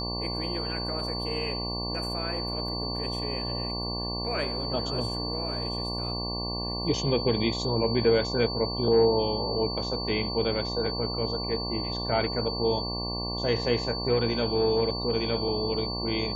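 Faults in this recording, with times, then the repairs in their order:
buzz 60 Hz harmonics 19 -34 dBFS
whine 4.5 kHz -33 dBFS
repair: band-stop 4.5 kHz, Q 30; de-hum 60 Hz, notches 19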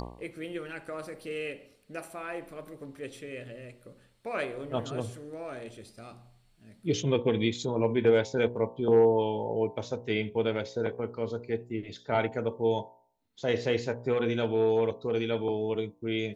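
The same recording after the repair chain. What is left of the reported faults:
nothing left

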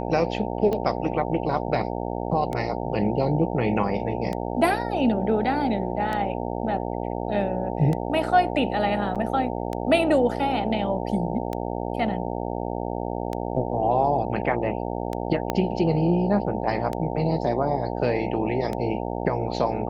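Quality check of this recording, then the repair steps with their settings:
buzz 60 Hz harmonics 15 -29 dBFS
tick 33 1/3 rpm -16 dBFS
9.15–9.16 s: dropout 6.8 ms
15.50 s: pop -10 dBFS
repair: de-click; de-hum 60 Hz, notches 15; interpolate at 9.15 s, 6.8 ms

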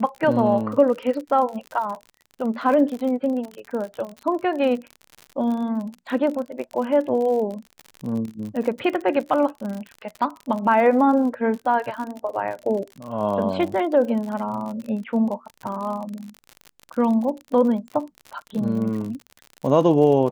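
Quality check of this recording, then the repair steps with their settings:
crackle 51 per s -29 dBFS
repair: de-click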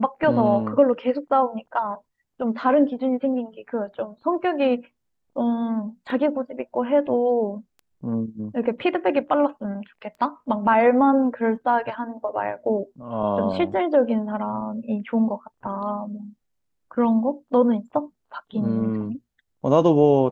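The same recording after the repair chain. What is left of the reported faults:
nothing left

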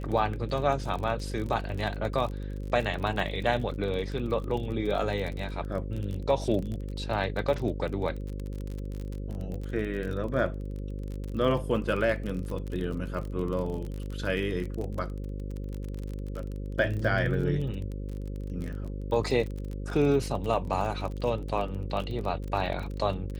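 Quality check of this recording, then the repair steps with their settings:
buzz 50 Hz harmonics 11 -35 dBFS
crackle 30 per s -33 dBFS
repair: de-click; de-hum 50 Hz, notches 11

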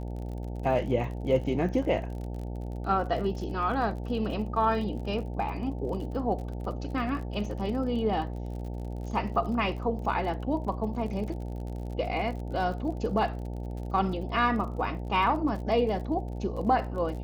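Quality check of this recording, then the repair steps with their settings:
buzz 60 Hz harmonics 15 -35 dBFS
crackle 44 per s -38 dBFS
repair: de-click; de-hum 60 Hz, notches 15

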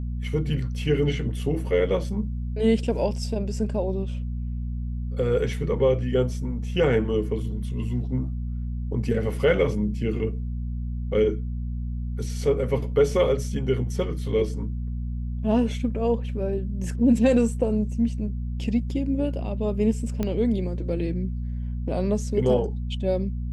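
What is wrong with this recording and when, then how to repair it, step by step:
hum 60 Hz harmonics 4 -29 dBFS
20.23 s: pop -14 dBFS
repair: de-click; de-hum 60 Hz, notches 4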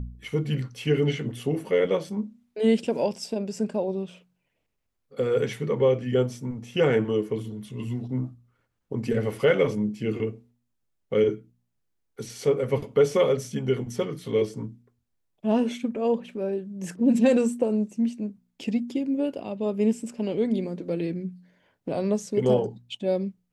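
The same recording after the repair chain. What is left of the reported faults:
nothing left

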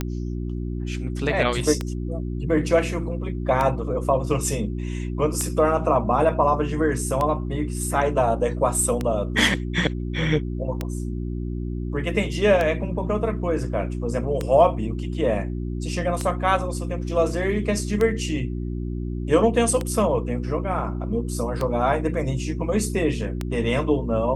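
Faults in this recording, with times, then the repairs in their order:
hum 60 Hz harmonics 6 -28 dBFS
tick 33 1/3 rpm -11 dBFS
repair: de-click; de-hum 60 Hz, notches 6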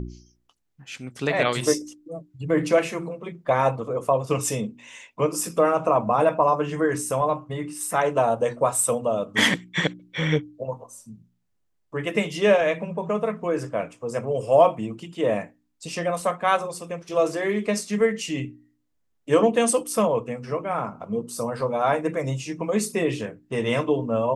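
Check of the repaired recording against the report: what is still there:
nothing left

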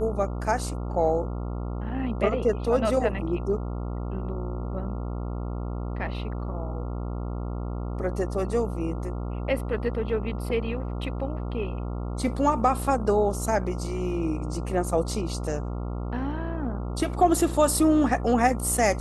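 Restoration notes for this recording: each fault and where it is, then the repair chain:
buzz 60 Hz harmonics 23 -31 dBFS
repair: de-hum 60 Hz, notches 23

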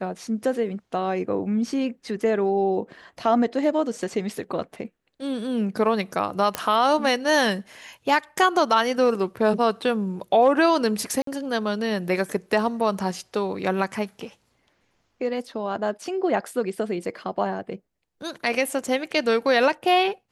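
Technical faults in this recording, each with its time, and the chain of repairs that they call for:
6.55 s: pop -8 dBFS
11.22–11.27 s: dropout 53 ms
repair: de-click; interpolate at 11.22 s, 53 ms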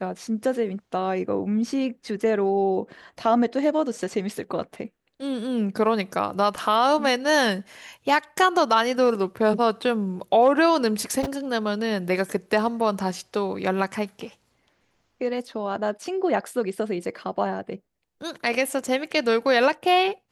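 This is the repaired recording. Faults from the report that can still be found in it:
nothing left

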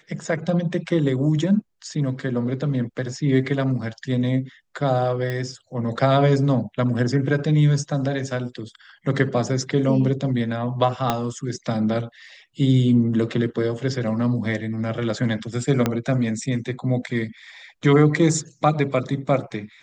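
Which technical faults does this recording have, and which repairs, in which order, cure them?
5.30 s: pop -15 dBFS
11.10 s: pop -6 dBFS
15.86 s: pop -6 dBFS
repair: de-click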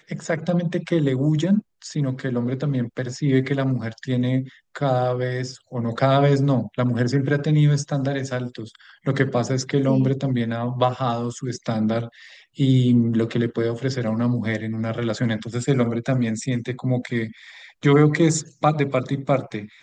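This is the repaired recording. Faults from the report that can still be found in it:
11.10 s: pop
15.86 s: pop

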